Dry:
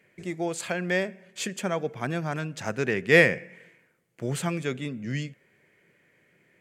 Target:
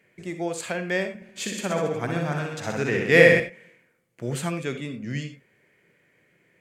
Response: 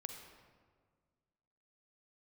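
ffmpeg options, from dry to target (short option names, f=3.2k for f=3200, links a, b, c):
-filter_complex "[0:a]asettb=1/sr,asplit=3[a][b][c];[a]atrim=end=1.094[d];[b]atrim=start=1.09:end=3.4,asetpts=PTS-STARTPTS,afade=t=in:d=0.004:c=qsin,afade=t=out:st=2.306:d=0.004:c=qsin,aecho=1:1:60|126|198.6|278.5|366.3:0.631|0.398|0.251|0.158|0.1,atrim=end_sample=101871[e];[c]atrim=start=3.396[f];[d][e]acrossfade=d=0.004:c1=hsin:c2=qsin[g];[g][f]acrossfade=d=0.004:c1=qsin:c2=hsin[h];[1:a]atrim=start_sample=2205,atrim=end_sample=4410[i];[h][i]afir=irnorm=-1:irlink=0,volume=4dB"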